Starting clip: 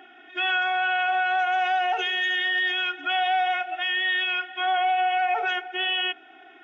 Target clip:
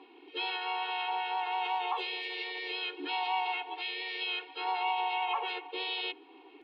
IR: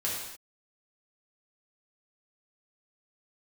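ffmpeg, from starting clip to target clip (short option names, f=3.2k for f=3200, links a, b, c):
-filter_complex "[0:a]asplit=3[a][b][c];[a]bandpass=f=300:t=q:w=8,volume=0dB[d];[b]bandpass=f=870:t=q:w=8,volume=-6dB[e];[c]bandpass=f=2.24k:t=q:w=8,volume=-9dB[f];[d][e][f]amix=inputs=3:normalize=0,asplit=4[g][h][i][j];[h]asetrate=52444,aresample=44100,atempo=0.840896,volume=-8dB[k];[i]asetrate=55563,aresample=44100,atempo=0.793701,volume=-1dB[l];[j]asetrate=66075,aresample=44100,atempo=0.66742,volume=-13dB[m];[g][k][l][m]amix=inputs=4:normalize=0,volume=5dB"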